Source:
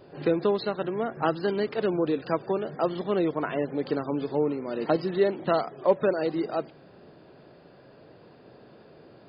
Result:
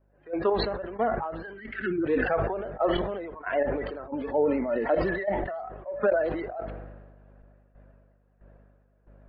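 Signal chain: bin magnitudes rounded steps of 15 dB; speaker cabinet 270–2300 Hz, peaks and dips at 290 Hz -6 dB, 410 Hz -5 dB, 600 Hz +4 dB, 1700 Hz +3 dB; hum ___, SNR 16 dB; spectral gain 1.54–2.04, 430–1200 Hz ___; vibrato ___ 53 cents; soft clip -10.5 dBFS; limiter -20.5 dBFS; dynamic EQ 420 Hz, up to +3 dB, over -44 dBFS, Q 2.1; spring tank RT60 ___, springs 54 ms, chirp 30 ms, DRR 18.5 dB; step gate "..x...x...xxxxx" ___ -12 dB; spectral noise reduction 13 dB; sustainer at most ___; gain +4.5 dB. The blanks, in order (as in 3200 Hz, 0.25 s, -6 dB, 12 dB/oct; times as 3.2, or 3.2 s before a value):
50 Hz, -29 dB, 9.9 Hz, 2.5 s, 91 bpm, 38 dB/s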